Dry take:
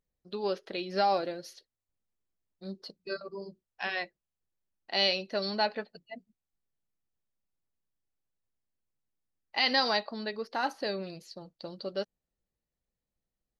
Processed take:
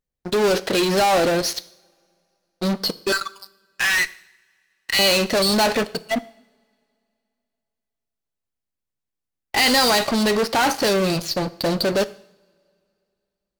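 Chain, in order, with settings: 3.12–4.99 s: steep high-pass 1.2 kHz 36 dB/octave; in parallel at -5.5 dB: fuzz box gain 48 dB, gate -55 dBFS; on the sum: reverberation, pre-delay 3 ms, DRR 15 dB

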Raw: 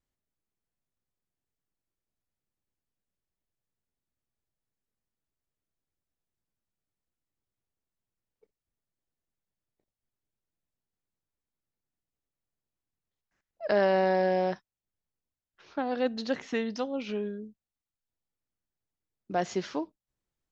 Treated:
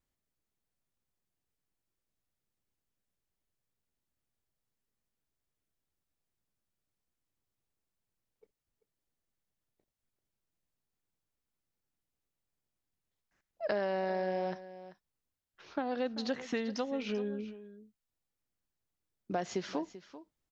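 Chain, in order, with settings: compression 4:1, threshold -32 dBFS, peak gain reduction 10.5 dB; delay 389 ms -15 dB; trim +1 dB

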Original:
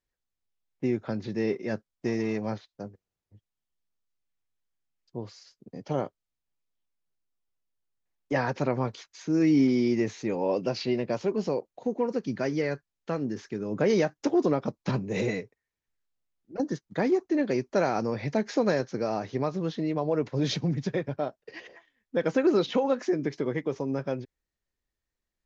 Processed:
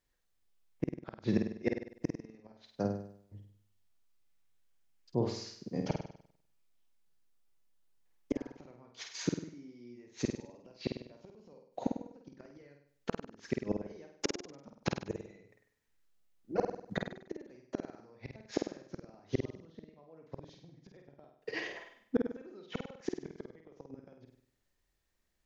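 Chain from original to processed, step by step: inverted gate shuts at -22 dBFS, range -35 dB; flutter echo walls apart 8.5 m, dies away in 0.61 s; trim +4.5 dB

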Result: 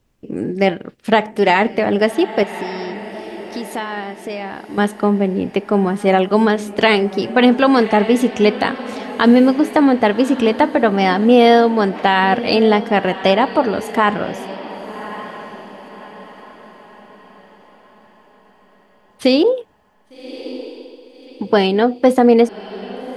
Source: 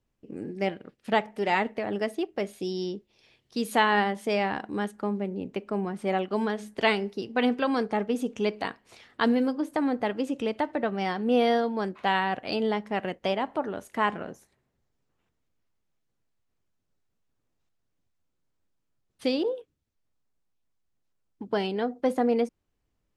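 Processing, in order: 2.43–4.78 s: compression 2.5:1, threshold -46 dBFS, peak gain reduction 18.5 dB; echo that smears into a reverb 1158 ms, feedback 42%, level -15 dB; loudness maximiser +15 dB; trim -1 dB

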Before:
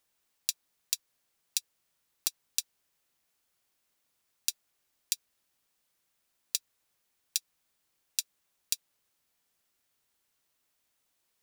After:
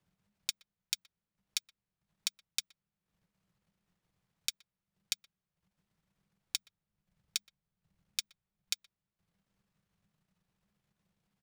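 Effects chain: RIAA curve playback; transient shaper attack +6 dB, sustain -11 dB; frequency shift -210 Hz; 6.56–8.73 s: bass shelf 130 Hz +8.5 dB; speakerphone echo 120 ms, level -18 dB

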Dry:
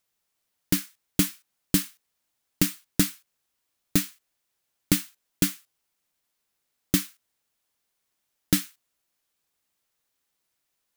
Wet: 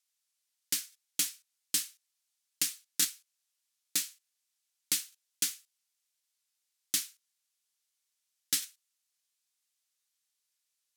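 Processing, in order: band-pass filter 6.8 kHz, Q 0.67; crackling interface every 0.70 s, samples 1024, repeat, from 0.90 s

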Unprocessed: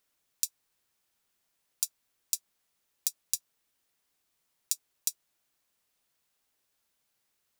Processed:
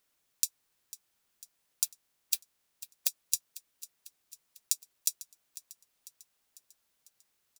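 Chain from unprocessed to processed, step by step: 1.84–3.07 s: spectral peaks clipped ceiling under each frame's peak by 20 dB; feedback delay 498 ms, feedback 56%, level -17 dB; trim +1 dB

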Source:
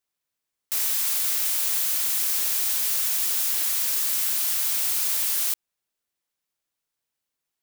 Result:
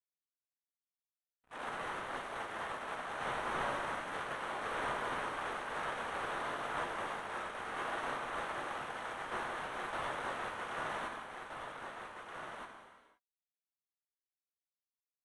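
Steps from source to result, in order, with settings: median filter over 9 samples; high-pass 1.1 kHz 6 dB/octave; gate -31 dBFS, range -55 dB; tilt EQ +2.5 dB/octave; waveshaping leveller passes 5; distance through air 220 m; on a send: delay 787 ms -6 dB; on the sum: gated-style reverb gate 280 ms falling, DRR 2.5 dB; speed mistake 15 ips tape played at 7.5 ips; trim +12.5 dB

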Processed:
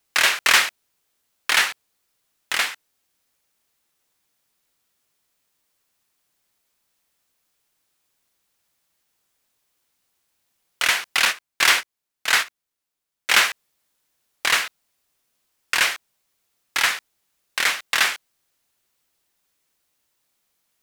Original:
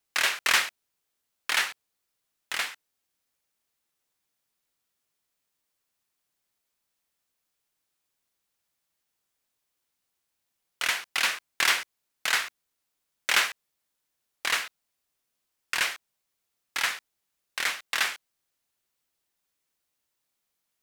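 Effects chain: 11.25–13.42 s: gate -27 dBFS, range -11 dB; in parallel at -7 dB: hard clipper -23.5 dBFS, distortion -8 dB; on the sum: trim +5 dB

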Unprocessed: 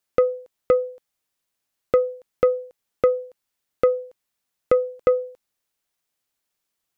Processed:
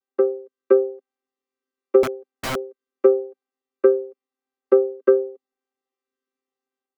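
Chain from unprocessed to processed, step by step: vocoder on a held chord bare fifth, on C4; level rider gain up to 5.5 dB; 2.03–2.56 s: integer overflow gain 18 dB; treble shelf 2.3 kHz -8.5 dB

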